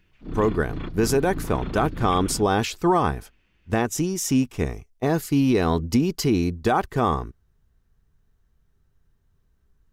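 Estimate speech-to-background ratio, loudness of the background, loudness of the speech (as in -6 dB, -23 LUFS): 11.0 dB, -34.5 LUFS, -23.5 LUFS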